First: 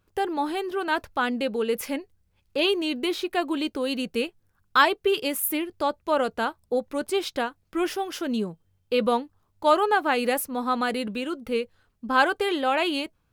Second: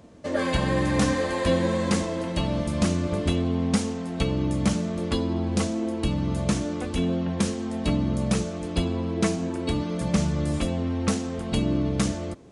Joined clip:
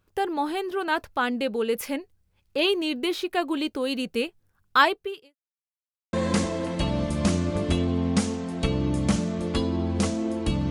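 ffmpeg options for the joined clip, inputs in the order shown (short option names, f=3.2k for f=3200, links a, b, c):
-filter_complex "[0:a]apad=whole_dur=10.7,atrim=end=10.7,asplit=2[a][b];[a]atrim=end=5.36,asetpts=PTS-STARTPTS,afade=t=out:st=4.87:d=0.49:c=qua[c];[b]atrim=start=5.36:end=6.13,asetpts=PTS-STARTPTS,volume=0[d];[1:a]atrim=start=1.7:end=6.27,asetpts=PTS-STARTPTS,afade=t=in:d=0.004:c=hsin[e];[c][d][e]concat=n=3:v=0:a=1"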